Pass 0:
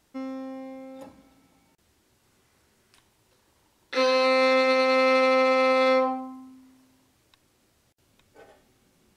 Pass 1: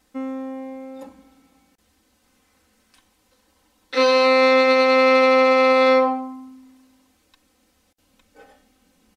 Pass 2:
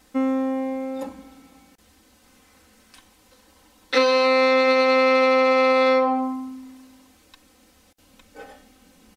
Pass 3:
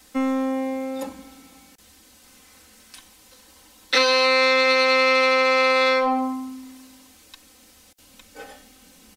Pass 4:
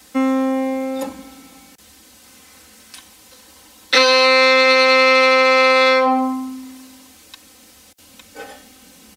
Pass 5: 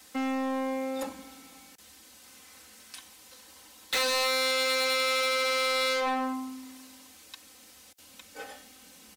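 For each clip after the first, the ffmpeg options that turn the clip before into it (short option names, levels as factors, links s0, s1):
-af "aecho=1:1:3.9:0.96"
-af "acompressor=threshold=0.0794:ratio=10,volume=2.24"
-filter_complex "[0:a]highshelf=f=2400:g=8.5,acrossover=split=290|520|1500[s0][s1][s2][s3];[s1]aeval=exprs='0.0422*(abs(mod(val(0)/0.0422+3,4)-2)-1)':c=same[s4];[s0][s4][s2][s3]amix=inputs=4:normalize=0"
-af "highpass=57,volume=1.88"
-af "asoftclip=type=hard:threshold=0.119,lowshelf=f=420:g=-6,volume=0.501"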